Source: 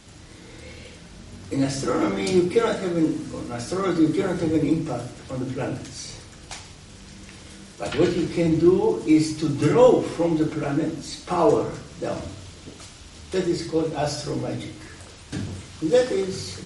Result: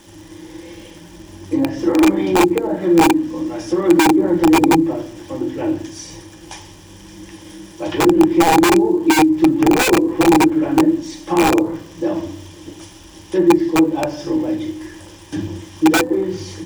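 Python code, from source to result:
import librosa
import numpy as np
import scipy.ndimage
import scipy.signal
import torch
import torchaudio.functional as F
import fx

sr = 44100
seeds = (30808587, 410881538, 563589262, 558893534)

p1 = fx.env_lowpass_down(x, sr, base_hz=730.0, full_db=-16.0)
p2 = fx.hum_notches(p1, sr, base_hz=60, count=6)
p3 = 10.0 ** (-13.0 / 20.0) * np.tanh(p2 / 10.0 ** (-13.0 / 20.0))
p4 = p2 + F.gain(torch.from_numpy(p3), -4.5).numpy()
p5 = fx.ripple_eq(p4, sr, per_octave=1.2, db=11)
p6 = (np.mod(10.0 ** (8.5 / 20.0) * p5 + 1.0, 2.0) - 1.0) / 10.0 ** (8.5 / 20.0)
p7 = fx.small_body(p6, sr, hz=(340.0, 810.0, 2400.0), ring_ms=40, db=13)
p8 = fx.dmg_crackle(p7, sr, seeds[0], per_s=550.0, level_db=-34.0)
p9 = fx.peak_eq(p8, sr, hz=7400.0, db=5.5, octaves=0.21)
y = F.gain(torch.from_numpy(p9), -4.5).numpy()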